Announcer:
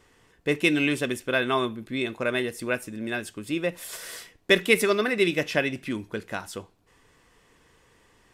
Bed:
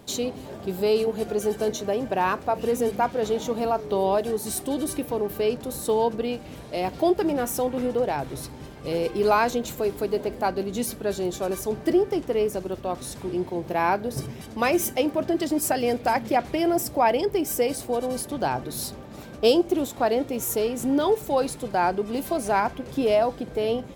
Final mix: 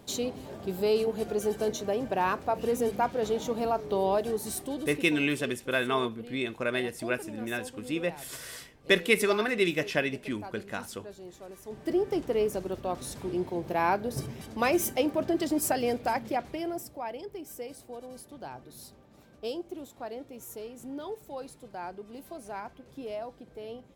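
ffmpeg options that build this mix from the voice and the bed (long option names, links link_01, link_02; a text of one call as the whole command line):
ffmpeg -i stem1.wav -i stem2.wav -filter_complex "[0:a]adelay=4400,volume=-3.5dB[link_01];[1:a]volume=11dB,afade=type=out:start_time=4.35:duration=0.89:silence=0.188365,afade=type=in:start_time=11.62:duration=0.55:silence=0.177828,afade=type=out:start_time=15.68:duration=1.3:silence=0.223872[link_02];[link_01][link_02]amix=inputs=2:normalize=0" out.wav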